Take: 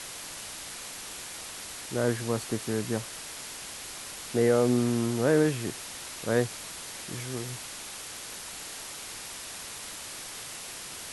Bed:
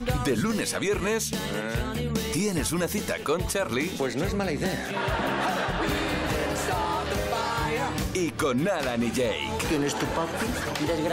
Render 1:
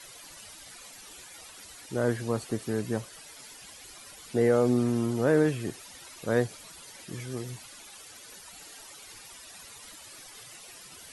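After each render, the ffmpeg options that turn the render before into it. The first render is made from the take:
-af "afftdn=nr=13:nf=-41"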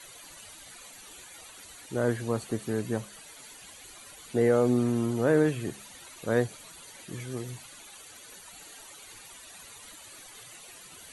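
-af "bandreject=f=5.2k:w=5.6,bandreject=f=68.52:t=h:w=4,bandreject=f=137.04:t=h:w=4,bandreject=f=205.56:t=h:w=4"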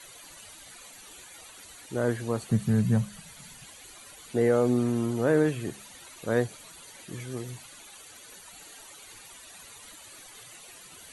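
-filter_complex "[0:a]asettb=1/sr,asplit=3[a][b][c];[a]atrim=end=2.514[d];[b]atrim=start=2.51:end=3.64,asetpts=PTS-STARTPTS,afade=t=in:d=0.004:c=qsin,afade=t=out:st=1.126:d=0.004:c=qsin,lowshelf=f=240:t=q:w=3:g=9.5[e];[c]atrim=start=3.636[f];[d][e]acrossfade=d=0.004:c1=hsin:c2=qsin[g];[g][f]acrossfade=d=0.004:c1=qsin:c2=hsin"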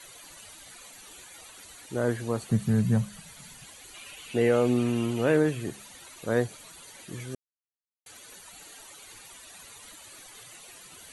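-filter_complex "[0:a]asettb=1/sr,asplit=3[a][b][c];[a]atrim=end=3.944[d];[b]atrim=start=3.94:end=5.37,asetpts=PTS-STARTPTS,afade=t=in:d=0.004:c=qsin,afade=t=out:st=1.426:d=0.004:c=qsin,equalizer=f=2.7k:t=o:w=0.54:g=13[e];[c]atrim=start=5.366[f];[d][e]acrossfade=d=0.004:c1=hsin:c2=qsin[g];[g][f]acrossfade=d=0.004:c1=qsin:c2=hsin,asplit=3[h][i][j];[h]atrim=end=7.35,asetpts=PTS-STARTPTS,afade=t=out:st=7.346:d=0.004:c=hsin[k];[i]atrim=start=7.35:end=8.06,asetpts=PTS-STARTPTS,volume=0[l];[j]atrim=start=8.06,asetpts=PTS-STARTPTS,afade=t=in:d=0.004:c=hsin[m];[k][l][m]concat=n=3:v=0:a=1"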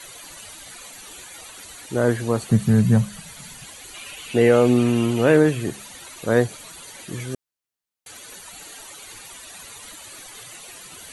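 -af "volume=7.5dB"

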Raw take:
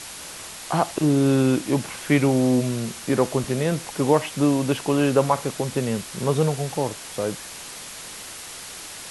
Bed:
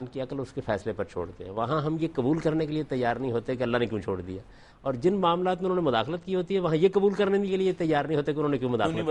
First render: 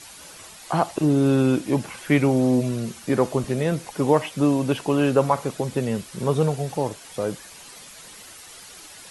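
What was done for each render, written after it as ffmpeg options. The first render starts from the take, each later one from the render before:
-af "afftdn=nr=9:nf=-38"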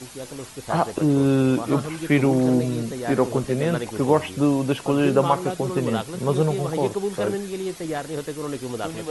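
-filter_complex "[1:a]volume=-3.5dB[a];[0:a][a]amix=inputs=2:normalize=0"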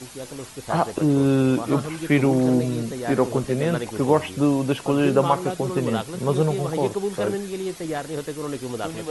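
-af anull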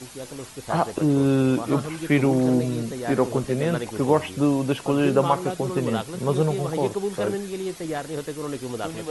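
-af "volume=-1dB"

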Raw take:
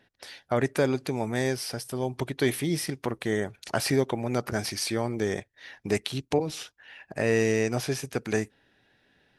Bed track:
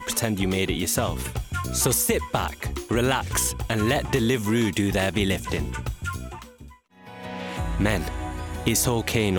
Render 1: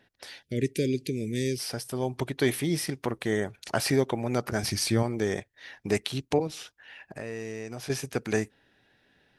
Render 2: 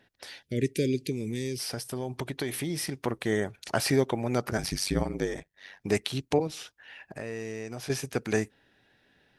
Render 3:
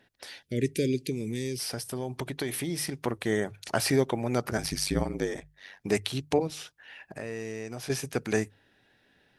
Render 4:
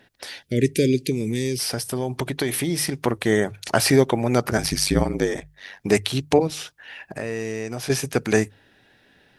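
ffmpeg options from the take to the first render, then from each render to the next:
-filter_complex "[0:a]asplit=3[a][b][c];[a]afade=t=out:st=0.42:d=0.02[d];[b]asuperstop=centerf=990:order=8:qfactor=0.57,afade=t=in:st=0.42:d=0.02,afade=t=out:st=1.58:d=0.02[e];[c]afade=t=in:st=1.58:d=0.02[f];[d][e][f]amix=inputs=3:normalize=0,asettb=1/sr,asplit=3[g][h][i];[g]atrim=end=4.634[j];[h]atrim=start=4.63:end=5.03,asetpts=PTS-STARTPTS,afade=t=in:d=0.004:c=qsin,afade=t=out:st=0.396:d=0.004:c=qsin,bass=f=250:g=10,treble=f=4k:g=2[k];[i]atrim=start=5.026[l];[j][k]acrossfade=d=0.004:c1=hsin:c2=qsin[m];[m][l]acrossfade=d=0.004:c1=qsin:c2=hsin,asettb=1/sr,asplit=3[n][o][p];[n]atrim=end=6.474[q];[o]atrim=start=6.47:end=7.9,asetpts=PTS-STARTPTS,afade=t=in:d=0.004:c=qsin,afade=t=out:st=1.426:d=0.004:c=qsin,acompressor=threshold=-38dB:ratio=2.5:attack=3.2:release=140:knee=1:detection=peak[r];[p]atrim=start=7.896[s];[q][r]acrossfade=d=0.004:c1=hsin:c2=qsin[t];[t][s]acrossfade=d=0.004:c1=qsin:c2=hsin"
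-filter_complex "[0:a]asettb=1/sr,asplit=3[a][b][c];[a]atrim=end=1.114[d];[b]atrim=start=1.11:end=2.95,asetpts=PTS-STARTPTS,afade=t=in:d=0.004:c=qsin,afade=t=out:st=1.836:d=0.004:c=qsin,acompressor=threshold=-27dB:ratio=6:attack=3.2:release=140:knee=1:detection=peak[e];[c]atrim=start=2.946[f];[d][e]acrossfade=d=0.004:c1=hsin:c2=qsin[g];[g][f]acrossfade=d=0.004:c1=qsin:c2=hsin,asettb=1/sr,asplit=3[h][i][j];[h]atrim=end=4.574[k];[i]atrim=start=4.57:end=5.81,asetpts=PTS-STARTPTS,afade=t=in:d=0.004:c=qsin,afade=t=out:st=1.236:d=0.004:c=qsin,aeval=exprs='val(0)*sin(2*PI*48*n/s)':c=same[l];[j]atrim=start=5.806[m];[k][l]acrossfade=d=0.004:c1=hsin:c2=qsin[n];[n][m]acrossfade=d=0.004:c1=qsin:c2=hsin"
-af "equalizer=f=10k:w=1.5:g=2,bandreject=f=50:t=h:w=6,bandreject=f=100:t=h:w=6,bandreject=f=150:t=h:w=6"
-af "volume=8dB,alimiter=limit=-2dB:level=0:latency=1"

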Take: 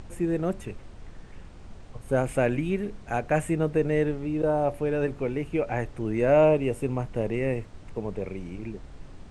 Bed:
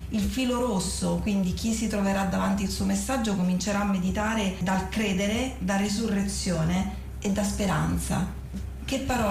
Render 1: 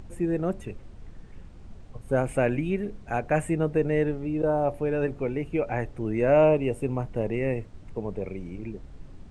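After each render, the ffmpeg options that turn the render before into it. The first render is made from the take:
-af "afftdn=nr=6:nf=-46"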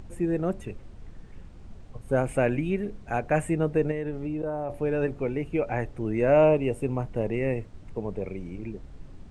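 -filter_complex "[0:a]asettb=1/sr,asplit=3[a][b][c];[a]atrim=end=3.914[d];[b]atrim=start=3.91:end=4.7,asetpts=PTS-STARTPTS,afade=t=in:d=0.004:c=qsin,afade=t=out:st=0.786:d=0.004:c=qsin,acompressor=threshold=-27dB:ratio=5:attack=3.2:release=140:knee=1:detection=peak[e];[c]atrim=start=4.696[f];[d][e]acrossfade=d=0.004:c1=hsin:c2=qsin[g];[g][f]acrossfade=d=0.004:c1=qsin:c2=hsin"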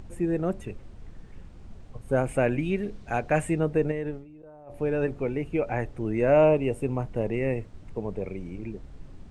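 -filter_complex "[0:a]asettb=1/sr,asplit=3[a][b][c];[a]atrim=end=2.594[d];[b]atrim=start=2.59:end=3.6,asetpts=PTS-STARTPTS,afade=t=in:d=0.004:c=qsin,afade=t=out:st=1.006:d=0.004:c=qsin,equalizer=f=4.3k:w=0.89:g=5.5[e];[c]atrim=start=3.596[f];[d][e]acrossfade=d=0.004:c1=hsin:c2=qsin[g];[g][f]acrossfade=d=0.004:c1=qsin:c2=hsin,asplit=3[h][i][j];[h]atrim=end=4.25,asetpts=PTS-STARTPTS,afade=t=out:st=4.1:d=0.15:silence=0.133352[k];[i]atrim=start=4.25:end=4.66,asetpts=PTS-STARTPTS,volume=-17.5dB[l];[j]atrim=start=4.66,asetpts=PTS-STARTPTS,afade=t=in:d=0.15:silence=0.133352[m];[k][l][m]concat=n=3:v=0:a=1"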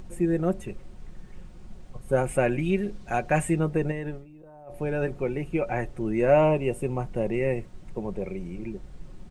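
-af "highshelf=f=8.1k:g=8,aecho=1:1:5.5:0.44"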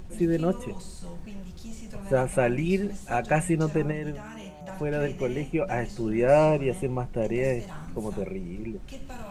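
-filter_complex "[1:a]volume=-16dB[a];[0:a][a]amix=inputs=2:normalize=0"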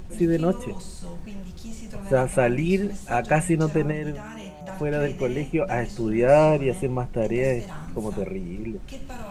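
-af "volume=3dB"

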